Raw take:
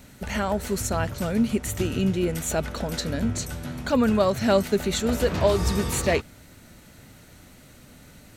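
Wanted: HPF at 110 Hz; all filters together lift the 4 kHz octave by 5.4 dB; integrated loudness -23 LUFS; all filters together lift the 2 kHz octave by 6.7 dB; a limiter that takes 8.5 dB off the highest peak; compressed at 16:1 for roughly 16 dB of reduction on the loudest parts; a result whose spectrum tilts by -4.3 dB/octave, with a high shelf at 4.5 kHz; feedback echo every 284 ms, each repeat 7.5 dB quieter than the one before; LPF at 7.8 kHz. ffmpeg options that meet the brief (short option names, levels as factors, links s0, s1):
-af "highpass=110,lowpass=7800,equalizer=f=2000:t=o:g=8,equalizer=f=4000:t=o:g=8,highshelf=f=4500:g=-7.5,acompressor=threshold=0.0282:ratio=16,alimiter=level_in=1.5:limit=0.0631:level=0:latency=1,volume=0.668,aecho=1:1:284|568|852|1136|1420:0.422|0.177|0.0744|0.0312|0.0131,volume=5.01"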